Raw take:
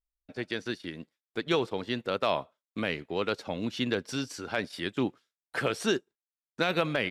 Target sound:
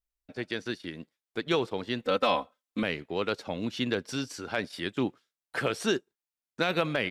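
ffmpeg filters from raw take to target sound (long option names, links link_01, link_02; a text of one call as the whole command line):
ffmpeg -i in.wav -filter_complex "[0:a]asettb=1/sr,asplit=3[link_01][link_02][link_03];[link_01]atrim=end=2.024[link_04];[link_02]atrim=start=2.02:end=2.83,asetpts=PTS-STARTPTS,afade=type=in:duration=0.004:curve=qsin,afade=type=out:start_time=0.806:duration=0.004:curve=qsin,aecho=1:1:3.9:0.99,atrim=end_sample=35721[link_05];[link_03]atrim=start=2.826[link_06];[link_04][link_05]acrossfade=duration=0.004:curve1=hsin:curve2=qsin[link_07];[link_07][link_06]acrossfade=duration=0.004:curve1=qsin:curve2=hsin" out.wav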